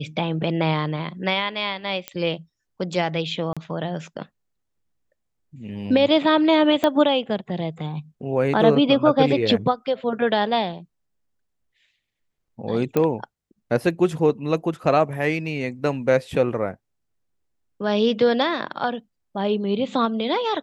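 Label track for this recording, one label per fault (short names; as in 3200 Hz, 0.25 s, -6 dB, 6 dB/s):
2.080000	2.080000	pop -12 dBFS
3.530000	3.570000	gap 36 ms
6.840000	6.840000	pop -8 dBFS
12.970000	12.970000	pop -9 dBFS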